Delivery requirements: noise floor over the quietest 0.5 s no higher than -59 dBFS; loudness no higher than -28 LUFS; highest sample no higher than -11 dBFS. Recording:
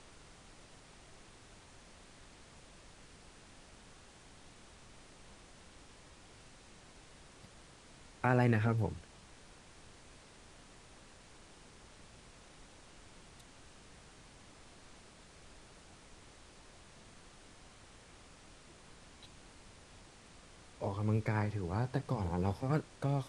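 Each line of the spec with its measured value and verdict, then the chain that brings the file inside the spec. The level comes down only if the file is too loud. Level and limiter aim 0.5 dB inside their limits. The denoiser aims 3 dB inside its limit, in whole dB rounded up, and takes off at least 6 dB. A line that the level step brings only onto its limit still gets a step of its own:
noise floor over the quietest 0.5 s -58 dBFS: fail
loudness -34.5 LUFS: pass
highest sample -14.0 dBFS: pass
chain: noise reduction 6 dB, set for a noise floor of -58 dBFS

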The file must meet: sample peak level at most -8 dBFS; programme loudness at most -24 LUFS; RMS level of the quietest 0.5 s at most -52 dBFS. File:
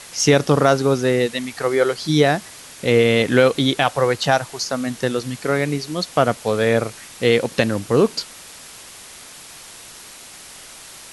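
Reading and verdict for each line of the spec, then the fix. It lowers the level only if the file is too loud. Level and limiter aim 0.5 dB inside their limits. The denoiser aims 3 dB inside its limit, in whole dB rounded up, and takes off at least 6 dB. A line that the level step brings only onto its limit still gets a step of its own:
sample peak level -2.5 dBFS: fail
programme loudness -19.0 LUFS: fail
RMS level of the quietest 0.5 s -40 dBFS: fail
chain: noise reduction 10 dB, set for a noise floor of -40 dBFS; trim -5.5 dB; peak limiter -8.5 dBFS

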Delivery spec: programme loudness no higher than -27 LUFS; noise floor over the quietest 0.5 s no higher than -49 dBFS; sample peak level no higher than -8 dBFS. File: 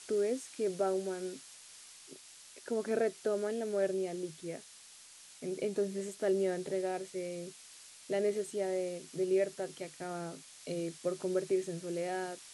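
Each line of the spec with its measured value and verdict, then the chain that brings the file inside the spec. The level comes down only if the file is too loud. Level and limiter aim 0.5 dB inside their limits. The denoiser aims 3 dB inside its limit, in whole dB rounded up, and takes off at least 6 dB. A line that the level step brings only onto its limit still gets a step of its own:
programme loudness -35.5 LUFS: pass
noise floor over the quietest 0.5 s -55 dBFS: pass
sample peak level -20.0 dBFS: pass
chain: none needed

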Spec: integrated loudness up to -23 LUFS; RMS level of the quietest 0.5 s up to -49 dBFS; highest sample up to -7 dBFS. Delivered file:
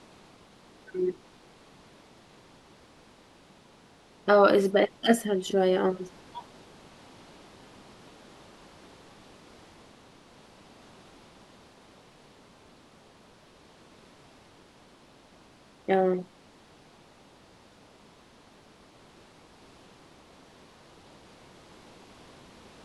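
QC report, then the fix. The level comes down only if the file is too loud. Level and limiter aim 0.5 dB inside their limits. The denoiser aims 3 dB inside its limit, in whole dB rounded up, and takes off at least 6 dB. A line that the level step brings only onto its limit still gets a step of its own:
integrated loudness -25.5 LUFS: pass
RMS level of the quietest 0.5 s -56 dBFS: pass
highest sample -8.0 dBFS: pass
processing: none needed

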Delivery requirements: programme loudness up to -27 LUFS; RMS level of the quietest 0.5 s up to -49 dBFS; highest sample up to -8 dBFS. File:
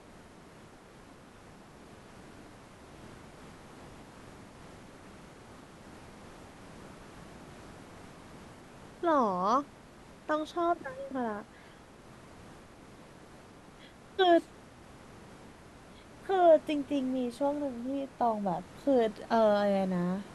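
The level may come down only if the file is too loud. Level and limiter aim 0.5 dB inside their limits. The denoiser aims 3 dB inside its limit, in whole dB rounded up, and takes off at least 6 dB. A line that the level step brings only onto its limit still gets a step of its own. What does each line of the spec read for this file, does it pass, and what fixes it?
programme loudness -29.5 LUFS: pass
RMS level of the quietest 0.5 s -53 dBFS: pass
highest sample -13.0 dBFS: pass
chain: none needed

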